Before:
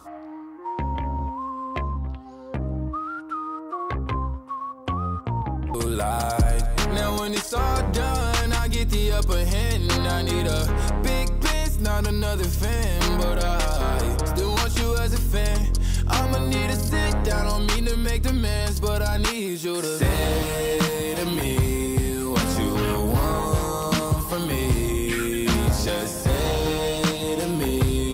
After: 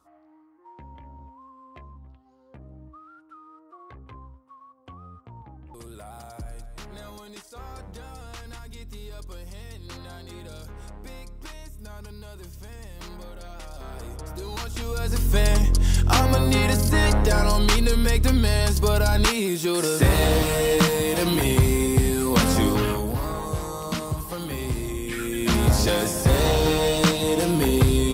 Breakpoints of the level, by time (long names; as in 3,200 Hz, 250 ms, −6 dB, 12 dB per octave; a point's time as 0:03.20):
0:13.52 −18 dB
0:14.85 −8 dB
0:15.35 +3 dB
0:22.68 +3 dB
0:23.16 −6 dB
0:25.10 −6 dB
0:25.74 +3 dB